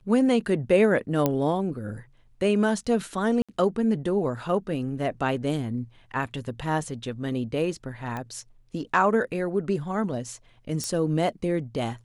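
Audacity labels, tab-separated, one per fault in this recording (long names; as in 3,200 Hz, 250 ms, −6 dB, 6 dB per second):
1.260000	1.260000	click −9 dBFS
3.420000	3.490000	drop-out 66 ms
8.170000	8.170000	click −20 dBFS
10.840000	10.840000	click −15 dBFS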